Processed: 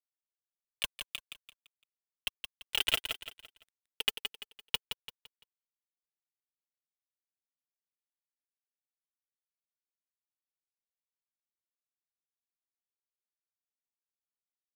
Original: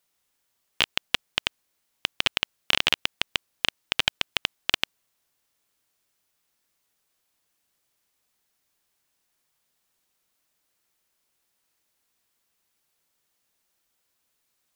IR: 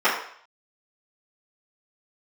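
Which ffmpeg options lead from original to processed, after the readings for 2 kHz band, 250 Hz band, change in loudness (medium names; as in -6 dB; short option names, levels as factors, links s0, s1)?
-12.0 dB, -15.0 dB, -8.5 dB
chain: -filter_complex "[0:a]aeval=exprs='val(0)+0.5*0.0944*sgn(val(0))':c=same,agate=range=0.00794:threshold=0.126:ratio=16:detection=peak,tiltshelf=f=1400:g=5.5,aecho=1:1:4.5:0.72,acrusher=bits=5:mix=0:aa=0.5,aphaser=in_gain=1:out_gain=1:delay=2.6:decay=0.47:speed=1.6:type=triangular,asplit=2[s0][s1];[s1]aecho=0:1:170|340|510|680:0.422|0.148|0.0517|0.0181[s2];[s0][s2]amix=inputs=2:normalize=0,volume=2.51"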